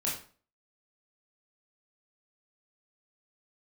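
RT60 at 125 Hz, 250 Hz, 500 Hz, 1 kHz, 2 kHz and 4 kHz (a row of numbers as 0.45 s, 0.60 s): 0.45 s, 0.45 s, 0.45 s, 0.40 s, 0.35 s, 0.35 s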